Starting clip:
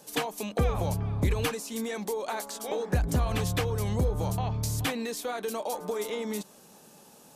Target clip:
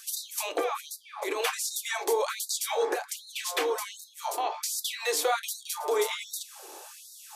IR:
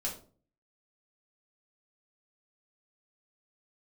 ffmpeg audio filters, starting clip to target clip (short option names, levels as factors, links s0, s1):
-filter_complex "[0:a]alimiter=level_in=1.12:limit=0.0631:level=0:latency=1:release=194,volume=0.891,asplit=2[s0][s1];[1:a]atrim=start_sample=2205,asetrate=66150,aresample=44100,highshelf=f=8500:g=-7[s2];[s1][s2]afir=irnorm=-1:irlink=0,volume=0.841[s3];[s0][s3]amix=inputs=2:normalize=0,afftfilt=real='re*gte(b*sr/1024,270*pow(3700/270,0.5+0.5*sin(2*PI*1.3*pts/sr)))':imag='im*gte(b*sr/1024,270*pow(3700/270,0.5+0.5*sin(2*PI*1.3*pts/sr)))':win_size=1024:overlap=0.75,volume=2.24"